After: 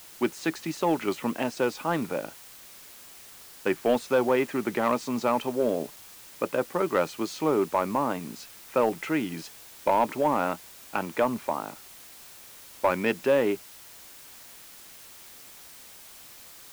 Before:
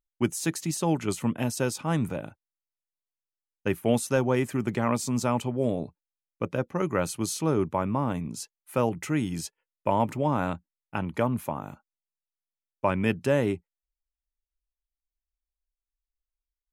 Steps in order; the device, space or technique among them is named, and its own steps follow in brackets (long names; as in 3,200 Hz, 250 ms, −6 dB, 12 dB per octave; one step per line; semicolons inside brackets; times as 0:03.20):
tape answering machine (band-pass filter 330–3,100 Hz; soft clipping −18 dBFS, distortion −17 dB; tape wow and flutter; white noise bed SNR 19 dB)
level +5 dB